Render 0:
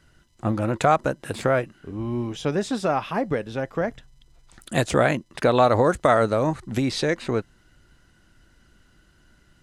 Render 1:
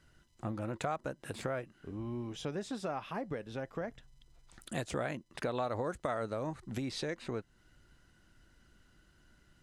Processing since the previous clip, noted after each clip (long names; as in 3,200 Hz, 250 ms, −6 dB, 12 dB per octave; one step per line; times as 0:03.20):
downward compressor 2 to 1, threshold −33 dBFS, peak gain reduction 11 dB
level −7 dB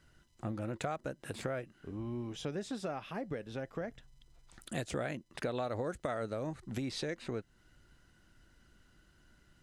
dynamic equaliser 1,000 Hz, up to −6 dB, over −52 dBFS, Q 2.1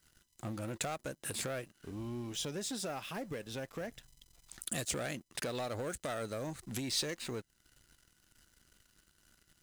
leveller curve on the samples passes 2
first-order pre-emphasis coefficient 0.8
level +5.5 dB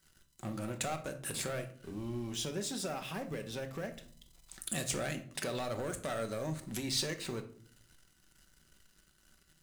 rectangular room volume 620 cubic metres, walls furnished, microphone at 1.1 metres